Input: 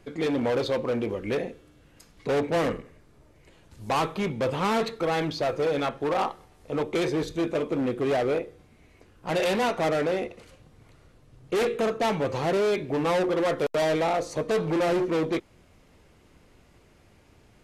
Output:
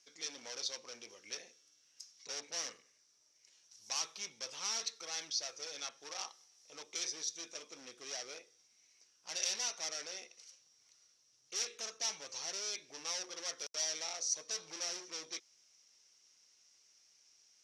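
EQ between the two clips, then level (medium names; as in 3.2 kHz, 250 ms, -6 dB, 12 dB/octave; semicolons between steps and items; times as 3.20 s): band-pass filter 5.7 kHz, Q 11; +14.5 dB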